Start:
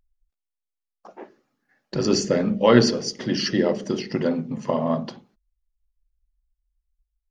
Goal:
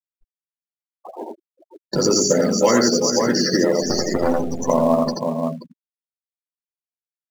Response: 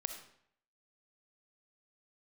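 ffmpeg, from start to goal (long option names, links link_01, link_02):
-filter_complex "[0:a]asettb=1/sr,asplit=3[link_01][link_02][link_03];[link_01]atrim=end=3.824[link_04];[link_02]atrim=start=3.82:end=4.62,asetpts=PTS-STARTPTS,afade=type=in:duration=0.004:curve=qsin,afade=type=out:start_time=0.796:duration=0.004:curve=qsin,aeval=exprs='max(val(0),0)':channel_layout=same[link_05];[link_03]atrim=start=4.616[link_06];[link_04][link_05]acrossfade=duration=0.004:curve1=hsin:curve2=qsin[link_07];[link_07][link_06]acrossfade=duration=0.004:curve1=qsin:curve2=hsin,equalizer=frequency=3000:width=3.5:gain=-14,aecho=1:1:83|376|531:0.708|0.15|0.316,acrossover=split=260|1700[link_08][link_09][link_10];[link_08]acompressor=threshold=-36dB:ratio=4[link_11];[link_09]acompressor=threshold=-24dB:ratio=4[link_12];[link_10]acompressor=threshold=-37dB:ratio=4[link_13];[link_11][link_12][link_13]amix=inputs=3:normalize=0,equalizer=frequency=6900:width=1.8:gain=14,asplit=2[link_14][link_15];[link_15]adelay=12,volume=-6dB[link_16];[link_14][link_16]amix=inputs=2:normalize=0,afftfilt=real='re*gte(hypot(re,im),0.02)':imag='im*gte(hypot(re,im),0.02)':win_size=1024:overlap=0.75,asplit=2[link_17][link_18];[link_18]acrusher=bits=3:mode=log:mix=0:aa=0.000001,volume=-11.5dB[link_19];[link_17][link_19]amix=inputs=2:normalize=0,volume=5.5dB"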